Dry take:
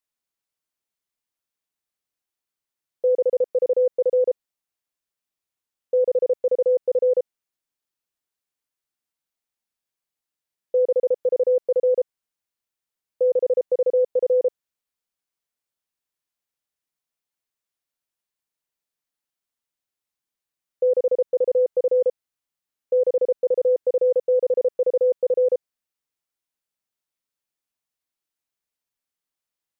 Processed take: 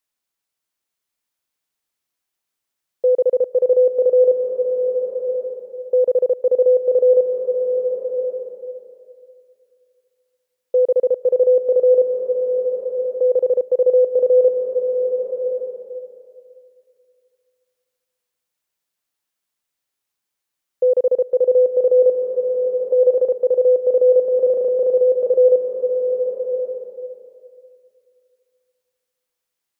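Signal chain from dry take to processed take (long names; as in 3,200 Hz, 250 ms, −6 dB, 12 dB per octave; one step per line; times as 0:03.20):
low-shelf EQ 370 Hz −3 dB
slow-attack reverb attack 1,200 ms, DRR 4 dB
level +5 dB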